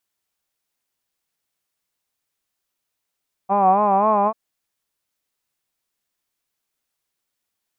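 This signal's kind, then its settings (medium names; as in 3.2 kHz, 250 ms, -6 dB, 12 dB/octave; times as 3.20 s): formant-synthesis vowel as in hod, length 0.84 s, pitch 191 Hz, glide +2 st, vibrato 3.8 Hz, vibrato depth 0.9 st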